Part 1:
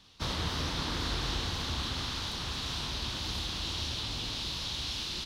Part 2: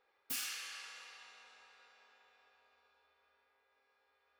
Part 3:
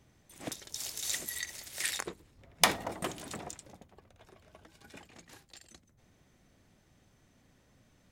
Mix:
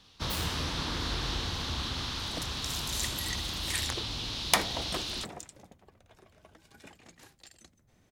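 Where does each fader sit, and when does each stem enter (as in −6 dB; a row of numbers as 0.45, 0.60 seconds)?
0.0, 0.0, −0.5 decibels; 0.00, 0.00, 1.90 seconds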